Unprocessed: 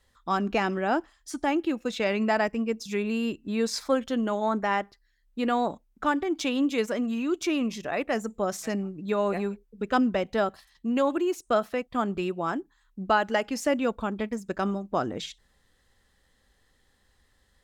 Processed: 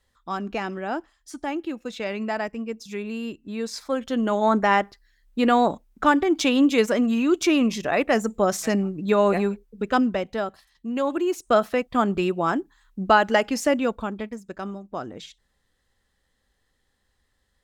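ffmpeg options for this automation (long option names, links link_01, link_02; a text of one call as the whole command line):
ffmpeg -i in.wav -af "volume=15dB,afade=type=in:start_time=3.87:duration=0.65:silence=0.316228,afade=type=out:start_time=9.3:duration=1.12:silence=0.354813,afade=type=in:start_time=10.92:duration=0.73:silence=0.398107,afade=type=out:start_time=13.41:duration=1.02:silence=0.281838" out.wav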